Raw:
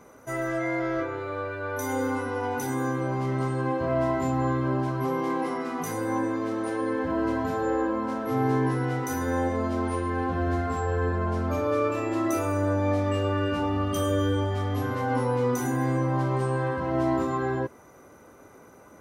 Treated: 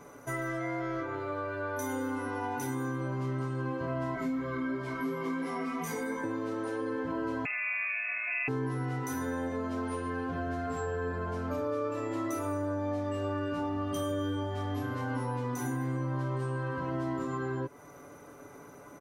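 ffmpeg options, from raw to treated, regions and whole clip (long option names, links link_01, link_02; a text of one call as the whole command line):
ffmpeg -i in.wav -filter_complex "[0:a]asettb=1/sr,asplit=3[link_01][link_02][link_03];[link_01]atrim=end=4.154[link_04];[link_02]atrim=start=4.15:end=6.24,asetpts=PTS-STARTPTS,afade=type=in:duration=0.004:curve=qsin,afade=type=out:start_time=2.086:duration=0.004:curve=qsin,aecho=1:1:4.4:0.99,atrim=end_sample=92169,aeval=exprs='val(0)+0.01*sin(2*PI*2200*n/s)':channel_layout=same,flanger=delay=17:depth=2.1:speed=2.9[link_05];[link_03]atrim=start=6.236[link_06];[link_04][link_05]acrossfade=duration=0.004:curve1=hsin:curve2=qsin[link_07];[link_07][link_06]acrossfade=duration=0.004:curve1=qsin:curve2=hsin,asettb=1/sr,asplit=3[link_08][link_09][link_10];[link_08]atrim=end=7.454[link_11];[link_09]atrim=start=7.45:end=8.48,asetpts=PTS-STARTPTS,afade=type=in:duration=0.004:curve=qsin,afade=type=out:start_time=1.026:duration=0.004:curve=qsin,lowpass=frequency=2400:width_type=q:width=0.5098,lowpass=frequency=2400:width_type=q:width=0.6013,lowpass=frequency=2400:width_type=q:width=0.9,lowpass=frequency=2400:width_type=q:width=2.563,afreqshift=-2800,aeval=exprs='val(0)+0.00282*sin(2*PI*620*n/s)':channel_layout=same[link_12];[link_10]atrim=start=8.476[link_13];[link_11][link_12]acrossfade=duration=0.004:curve1=hsin:curve2=qsin[link_14];[link_14][link_13]acrossfade=duration=0.004:curve1=qsin:curve2=hsin,aecho=1:1:7:0.52,acompressor=threshold=-33dB:ratio=3" out.wav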